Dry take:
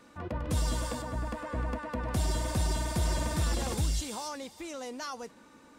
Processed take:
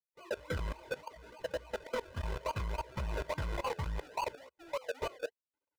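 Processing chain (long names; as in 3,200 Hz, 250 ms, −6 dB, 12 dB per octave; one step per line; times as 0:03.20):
spectral dynamics exaggerated over time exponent 3
high-shelf EQ 2,800 Hz −2 dB
sample-and-hold swept by an LFO 34×, swing 60% 3.5 Hz
chorus effect 0.68 Hz, delay 15.5 ms, depth 7.9 ms
in parallel at −7.5 dB: wave folding −36.5 dBFS
on the sum: mid-hump overdrive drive 16 dB, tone 2,600 Hz, clips at −25.5 dBFS
downward compressor 8 to 1, threshold −38 dBFS, peak gain reduction 5.5 dB
parametric band 74 Hz +4 dB 0.26 octaves
comb filter 2 ms, depth 57%
output level in coarse steps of 20 dB
saturating transformer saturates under 150 Hz
level +7 dB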